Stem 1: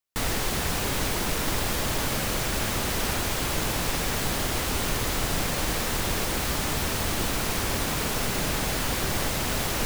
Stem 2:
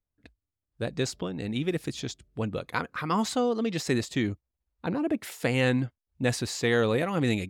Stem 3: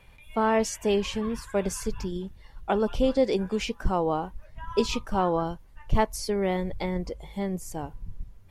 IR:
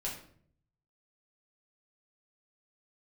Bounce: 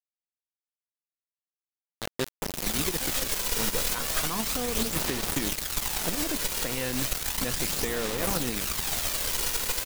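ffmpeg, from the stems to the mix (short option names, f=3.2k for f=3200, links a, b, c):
-filter_complex "[0:a]aphaser=in_gain=1:out_gain=1:delay=2.1:decay=0.63:speed=0.34:type=sinusoidal,dynaudnorm=f=270:g=3:m=13dB,adynamicequalizer=threshold=0.02:dfrequency=2600:dqfactor=0.7:tfrequency=2600:tqfactor=0.7:attack=5:release=100:ratio=0.375:range=4:mode=boostabove:tftype=highshelf,adelay=2200,volume=-16dB,asplit=2[a][b];[b]volume=-23.5dB[c];[1:a]adelay=1200,volume=0dB,asplit=2[d][e];[e]volume=-20dB[f];[2:a]bass=f=250:g=-1,treble=f=4k:g=13,volume=-16.5dB[g];[3:a]atrim=start_sample=2205[h];[c][f]amix=inputs=2:normalize=0[i];[i][h]afir=irnorm=-1:irlink=0[j];[a][d][g][j]amix=inputs=4:normalize=0,equalizer=f=100:w=4.5:g=-15,acrusher=bits=3:mix=0:aa=0.000001,alimiter=limit=-20dB:level=0:latency=1:release=154"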